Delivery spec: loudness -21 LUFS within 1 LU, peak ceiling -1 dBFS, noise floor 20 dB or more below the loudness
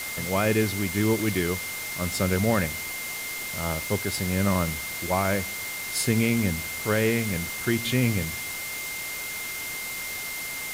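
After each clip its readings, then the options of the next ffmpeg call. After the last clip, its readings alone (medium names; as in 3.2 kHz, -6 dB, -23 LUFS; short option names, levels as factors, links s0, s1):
steady tone 2.1 kHz; tone level -34 dBFS; noise floor -34 dBFS; noise floor target -47 dBFS; loudness -26.5 LUFS; peak level -10.5 dBFS; loudness target -21.0 LUFS
-> -af "bandreject=f=2100:w=30"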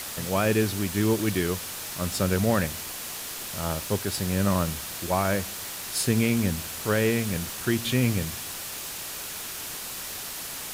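steady tone not found; noise floor -36 dBFS; noise floor target -47 dBFS
-> -af "afftdn=nr=11:nf=-36"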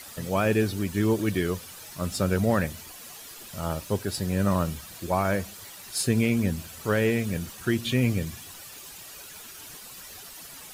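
noise floor -44 dBFS; noise floor target -47 dBFS
-> -af "afftdn=nr=6:nf=-44"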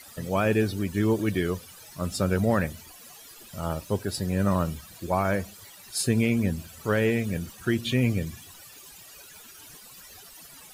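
noise floor -48 dBFS; loudness -27.0 LUFS; peak level -11.5 dBFS; loudness target -21.0 LUFS
-> -af "volume=2"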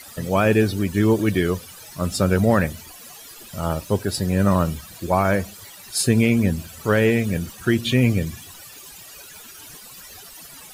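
loudness -21.0 LUFS; peak level -5.5 dBFS; noise floor -42 dBFS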